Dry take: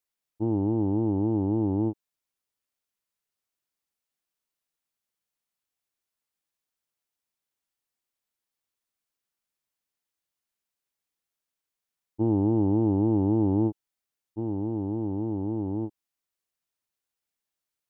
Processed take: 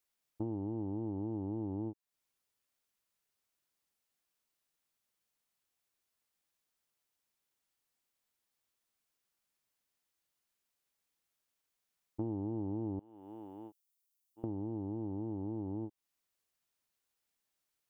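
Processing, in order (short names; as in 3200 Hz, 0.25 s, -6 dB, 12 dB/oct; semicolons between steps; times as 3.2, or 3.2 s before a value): 12.99–14.44 differentiator; compressor 4:1, threshold -40 dBFS, peak gain reduction 17 dB; gain +2 dB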